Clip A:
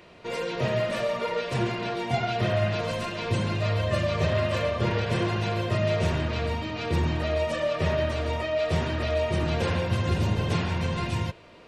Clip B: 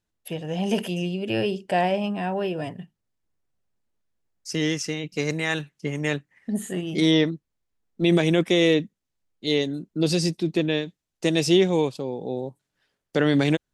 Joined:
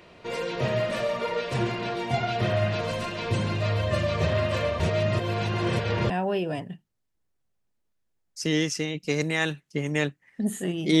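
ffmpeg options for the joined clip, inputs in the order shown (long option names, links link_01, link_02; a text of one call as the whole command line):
ffmpeg -i cue0.wav -i cue1.wav -filter_complex "[0:a]apad=whole_dur=11,atrim=end=11,asplit=2[link_01][link_02];[link_01]atrim=end=4.802[link_03];[link_02]atrim=start=4.798:end=6.102,asetpts=PTS-STARTPTS,areverse[link_04];[1:a]atrim=start=2.188:end=7.09[link_05];[link_03][link_04]acrossfade=duration=0.004:curve1=hsin:curve2=hsin[link_06];[link_06][link_05]acrossfade=duration=0.004:curve1=hsin:curve2=hsin" out.wav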